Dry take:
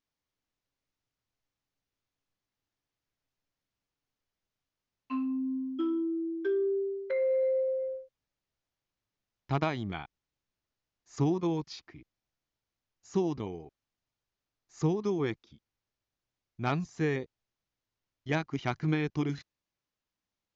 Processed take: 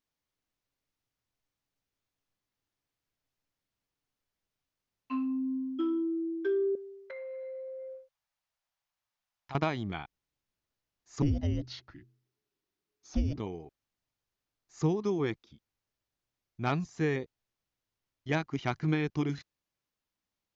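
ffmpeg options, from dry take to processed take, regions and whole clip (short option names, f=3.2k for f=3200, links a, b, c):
-filter_complex "[0:a]asettb=1/sr,asplit=3[a][b][c];[a]atrim=end=6.754[d];[b]atrim=start=6.75:end=9.55,asetpts=PTS-STARTPTS,afade=t=in:d=0.004:c=qsin,afade=t=out:st=2.796:d=0.004:c=qsin,lowshelf=f=560:t=q:w=1.5:g=-10.5,acompressor=threshold=-40dB:ratio=4:attack=3.2:release=140:knee=1:detection=peak[e];[c]atrim=start=9.546[f];[d][e]acrossfade=d=0.004:c1=hsin:c2=qsin[g];[g][f]acrossfade=d=0.004:c1=qsin:c2=hsin,asettb=1/sr,asplit=3[h][i][j];[h]atrim=end=11.224[k];[i]atrim=start=11.22:end=13.36,asetpts=PTS-STARTPTS,afade=t=in:d=0.004:c=qsin,afade=t=out:st=2.136:d=0.004:c=qsin,bandreject=f=101.3:t=h:w=4,bandreject=f=202.6:t=h:w=4,bandreject=f=303.9:t=h:w=4,bandreject=f=405.2:t=h:w=4,bandreject=f=506.5:t=h:w=4,bandreject=f=607.8:t=h:w=4,bandreject=f=709.1:t=h:w=4,afreqshift=-430[l];[j]atrim=start=13.356[m];[k][l]acrossfade=d=0.004:c1=hsin:c2=qsin[n];[n][m]acrossfade=d=0.004:c1=qsin:c2=hsin"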